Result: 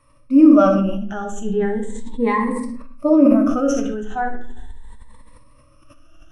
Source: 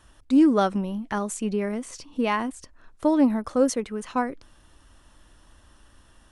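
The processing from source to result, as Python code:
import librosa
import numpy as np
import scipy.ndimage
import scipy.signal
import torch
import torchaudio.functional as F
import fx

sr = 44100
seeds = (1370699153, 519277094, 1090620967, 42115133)

y = fx.spec_ripple(x, sr, per_octave=0.95, drift_hz=0.37, depth_db=18)
y = scipy.signal.sosfilt(scipy.signal.butter(2, 8900.0, 'lowpass', fs=sr, output='sos'), y)
y = fx.low_shelf(y, sr, hz=110.0, db=8.5)
y = fx.hum_notches(y, sr, base_hz=50, count=10)
y = fx.vibrato(y, sr, rate_hz=6.4, depth_cents=20.0)
y = fx.peak_eq(y, sr, hz=4600.0, db=-14.0, octaves=0.27)
y = fx.room_early_taps(y, sr, ms=(61, 76), db=(-15.0, -17.0))
y = fx.hpss(y, sr, part='percussive', gain_db=-13)
y = fx.room_shoebox(y, sr, seeds[0], volume_m3=75.0, walls='mixed', distance_m=0.53)
y = fx.sustainer(y, sr, db_per_s=30.0)
y = y * librosa.db_to_amplitude(-2.5)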